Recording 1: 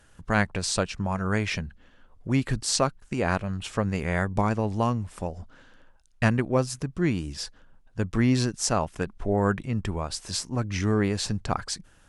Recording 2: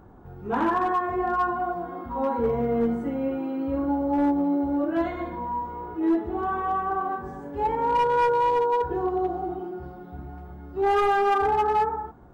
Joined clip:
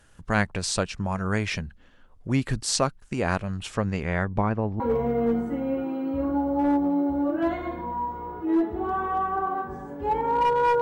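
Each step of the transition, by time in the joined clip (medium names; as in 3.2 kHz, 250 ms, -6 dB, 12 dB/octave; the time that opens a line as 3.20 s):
recording 1
3.75–4.80 s: low-pass 8.6 kHz -> 1.2 kHz
4.80 s: go over to recording 2 from 2.34 s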